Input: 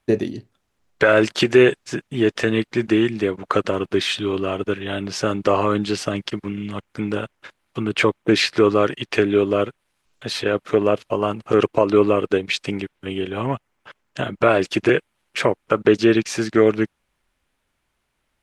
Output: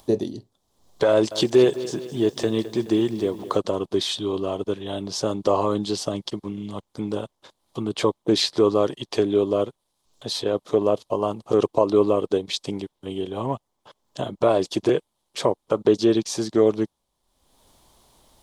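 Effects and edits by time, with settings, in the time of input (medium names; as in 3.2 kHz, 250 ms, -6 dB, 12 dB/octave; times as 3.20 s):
1.10–3.57 s: bit-crushed delay 212 ms, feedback 55%, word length 7-bit, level -14.5 dB
whole clip: bass shelf 420 Hz -5 dB; upward compressor, threshold -38 dBFS; high-order bell 1.9 kHz -15 dB 1.3 oct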